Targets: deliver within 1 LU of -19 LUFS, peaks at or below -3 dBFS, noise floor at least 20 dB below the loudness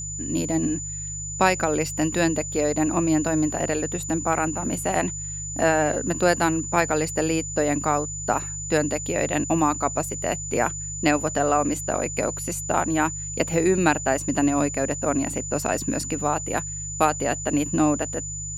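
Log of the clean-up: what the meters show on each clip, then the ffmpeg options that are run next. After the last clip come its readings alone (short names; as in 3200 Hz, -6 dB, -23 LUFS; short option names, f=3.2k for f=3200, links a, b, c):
hum 50 Hz; harmonics up to 150 Hz; hum level -35 dBFS; steady tone 7000 Hz; tone level -31 dBFS; loudness -23.5 LUFS; peak -4.0 dBFS; loudness target -19.0 LUFS
-> -af "bandreject=f=50:t=h:w=4,bandreject=f=100:t=h:w=4,bandreject=f=150:t=h:w=4"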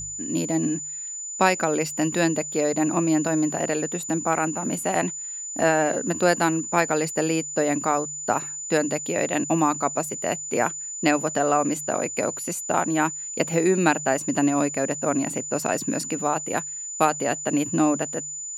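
hum none; steady tone 7000 Hz; tone level -31 dBFS
-> -af "bandreject=f=7k:w=30"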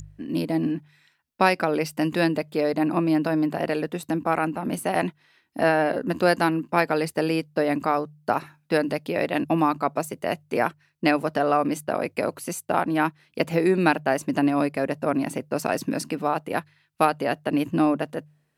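steady tone none; loudness -24.5 LUFS; peak -4.0 dBFS; loudness target -19.0 LUFS
-> -af "volume=5.5dB,alimiter=limit=-3dB:level=0:latency=1"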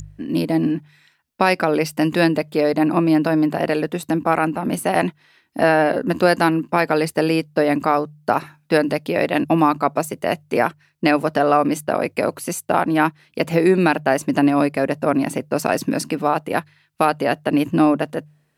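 loudness -19.5 LUFS; peak -3.0 dBFS; noise floor -62 dBFS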